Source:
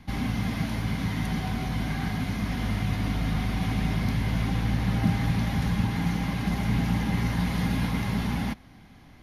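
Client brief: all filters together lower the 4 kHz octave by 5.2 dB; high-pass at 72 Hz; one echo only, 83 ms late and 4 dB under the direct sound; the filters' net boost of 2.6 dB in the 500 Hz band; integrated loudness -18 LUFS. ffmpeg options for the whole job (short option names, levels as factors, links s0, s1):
-af "highpass=72,equalizer=f=500:t=o:g=3.5,equalizer=f=4000:t=o:g=-7,aecho=1:1:83:0.631,volume=2.82"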